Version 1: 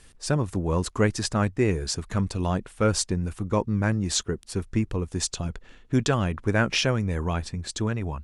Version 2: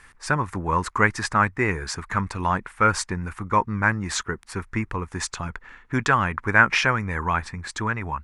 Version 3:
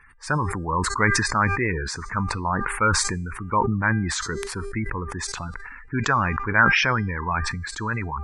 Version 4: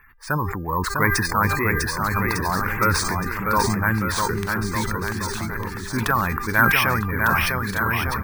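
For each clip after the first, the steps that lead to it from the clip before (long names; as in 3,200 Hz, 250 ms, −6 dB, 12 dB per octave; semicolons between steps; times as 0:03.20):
flat-topped bell 1,400 Hz +14 dB; level −2.5 dB
gate on every frequency bin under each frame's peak −20 dB strong; hum removal 398.7 Hz, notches 31; level that may fall only so fast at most 32 dB per second; level −2 dB
on a send: bouncing-ball delay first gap 650 ms, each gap 0.85×, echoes 5; on the sum: bad sample-rate conversion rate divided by 3×, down filtered, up hold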